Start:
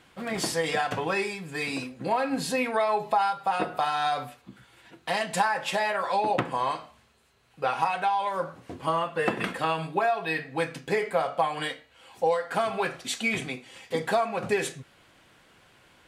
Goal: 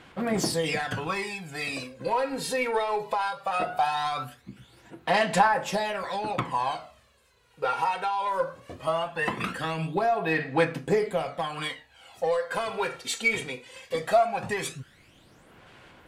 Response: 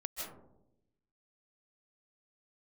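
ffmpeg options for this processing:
-filter_complex "[0:a]asplit=2[a][b];[b]asoftclip=type=tanh:threshold=-26dB,volume=-4dB[c];[a][c]amix=inputs=2:normalize=0,aphaser=in_gain=1:out_gain=1:delay=2.2:decay=0.6:speed=0.19:type=sinusoidal,volume=-5dB"

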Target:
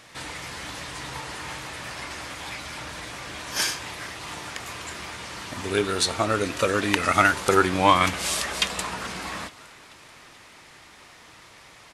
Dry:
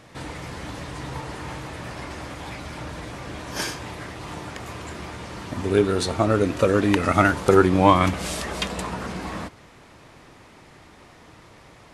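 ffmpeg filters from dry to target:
-filter_complex "[0:a]tiltshelf=f=930:g=-7,asplit=5[a][b][c][d][e];[b]adelay=432,afreqshift=85,volume=-23.5dB[f];[c]adelay=864,afreqshift=170,volume=-28.1dB[g];[d]adelay=1296,afreqshift=255,volume=-32.7dB[h];[e]adelay=1728,afreqshift=340,volume=-37.2dB[i];[a][f][g][h][i]amix=inputs=5:normalize=0,volume=-1dB"

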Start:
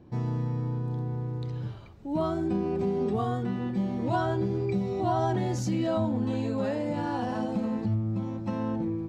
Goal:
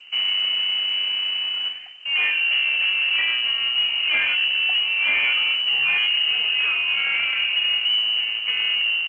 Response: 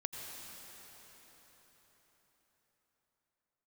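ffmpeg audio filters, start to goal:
-filter_complex "[0:a]lowshelf=f=470:g=-3.5,aecho=1:1:95:0.1,adynamicsmooth=sensitivity=6.5:basefreq=2.4k,asoftclip=type=tanh:threshold=-19.5dB,afreqshift=210,acrusher=bits=3:mode=log:mix=0:aa=0.000001,asoftclip=type=hard:threshold=-27dB,lowpass=f=2.8k:t=q:w=0.5098,lowpass=f=2.8k:t=q:w=0.6013,lowpass=f=2.8k:t=q:w=0.9,lowpass=f=2.8k:t=q:w=2.563,afreqshift=-3300,asplit=2[a][b];[1:a]atrim=start_sample=2205,atrim=end_sample=3969[c];[b][c]afir=irnorm=-1:irlink=0,volume=-0.5dB[d];[a][d]amix=inputs=2:normalize=0,volume=6dB" -ar 16000 -c:a g722

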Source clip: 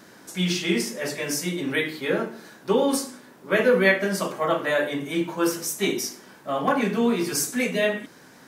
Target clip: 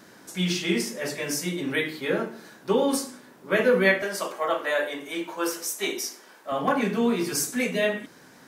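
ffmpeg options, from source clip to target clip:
-filter_complex "[0:a]asettb=1/sr,asplit=3[a][b][c];[a]atrim=end=4.024[d];[b]atrim=start=4.02:end=6.52,asetpts=PTS-STARTPTS,afade=t=in:d=0.004:c=qsin,afade=t=out:st=2.496:d=0.004:c=qsin,highpass=410[e];[c]atrim=start=6.516[f];[d][e]acrossfade=d=0.004:c1=hsin:c2=qsin[g];[g][f]acrossfade=d=0.004:c1=qsin:c2=hsin,volume=-1.5dB"

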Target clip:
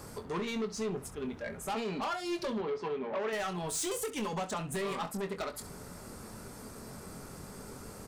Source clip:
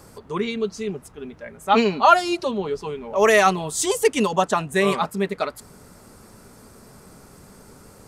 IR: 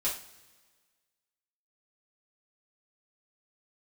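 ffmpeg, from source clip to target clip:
-filter_complex "[0:a]acompressor=threshold=-26dB:ratio=10,asoftclip=type=tanh:threshold=-31.5dB,asettb=1/sr,asplit=3[a][b][c];[a]atrim=end=2.614[d];[b]atrim=start=2.61:end=3.33,asetpts=PTS-STARTPTS,afade=t=in:d=0.004:c=qsin,afade=t=out:st=0.716:d=0.004:c=qsin,highpass=160,lowpass=3.4k[e];[c]atrim=start=3.326[f];[d][e]acrossfade=d=0.004:c1=hsin:c2=qsin[g];[g][f]acrossfade=d=0.004:c1=qsin:c2=hsin,aecho=1:1:23|67:0.376|0.178"

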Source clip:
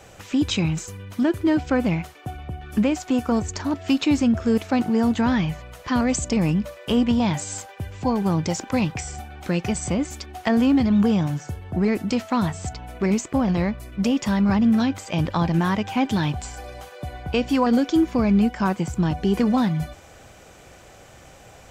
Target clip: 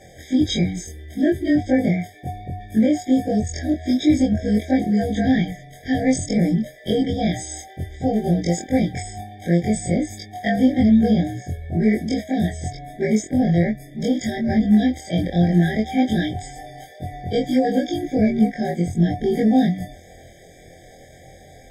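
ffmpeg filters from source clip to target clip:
-af "afftfilt=real='re':imag='-im':win_size=2048:overlap=0.75,afftfilt=real='re*eq(mod(floor(b*sr/1024/780),2),0)':imag='im*eq(mod(floor(b*sr/1024/780),2),0)':win_size=1024:overlap=0.75,volume=7dB"

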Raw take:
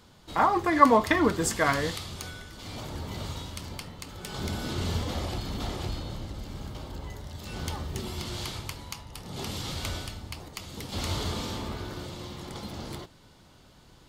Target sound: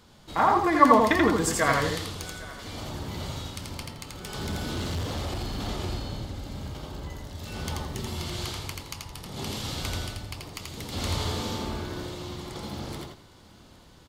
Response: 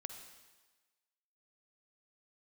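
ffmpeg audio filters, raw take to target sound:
-filter_complex "[0:a]asplit=2[a][b];[b]aecho=0:1:84|168|252:0.708|0.17|0.0408[c];[a][c]amix=inputs=2:normalize=0,asettb=1/sr,asplit=3[d][e][f];[d]atrim=end=4.214[g];[e]atrim=start=4.21:end=5.67,asetpts=PTS-STARTPTS,afade=t=in:d=0.004:c=qsin,afade=t=out:st=1.456:d=0.004:c=qsin,asoftclip=type=hard:threshold=-27dB[h];[f]atrim=start=5.666[i];[g][h]acrossfade=d=0.004:c1=hsin:c2=qsin[j];[j][i]acrossfade=d=0.004:c1=qsin:c2=hsin,asplit=2[k][l];[l]aecho=0:1:810:0.0841[m];[k][m]amix=inputs=2:normalize=0"

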